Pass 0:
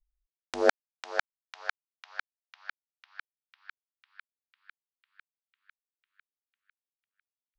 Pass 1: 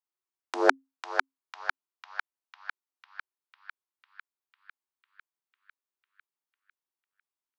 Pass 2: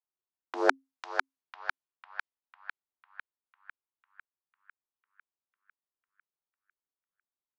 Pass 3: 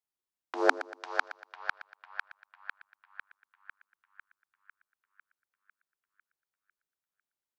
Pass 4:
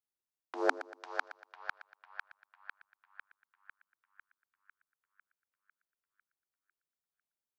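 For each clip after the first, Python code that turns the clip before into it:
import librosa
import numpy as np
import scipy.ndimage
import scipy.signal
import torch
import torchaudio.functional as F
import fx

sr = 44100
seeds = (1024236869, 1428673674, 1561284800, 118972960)

y1 = scipy.signal.sosfilt(scipy.signal.cheby1(6, 9, 260.0, 'highpass', fs=sr, output='sos'), x)
y1 = F.gain(torch.from_numpy(y1), 7.0).numpy()
y2 = fx.env_lowpass(y1, sr, base_hz=1300.0, full_db=-31.0)
y2 = F.gain(torch.from_numpy(y2), -3.0).numpy()
y3 = fx.echo_feedback(y2, sr, ms=118, feedback_pct=40, wet_db=-15.0)
y4 = fx.peak_eq(y3, sr, hz=3100.0, db=-3.0, octaves=2.9)
y4 = F.gain(torch.from_numpy(y4), -4.0).numpy()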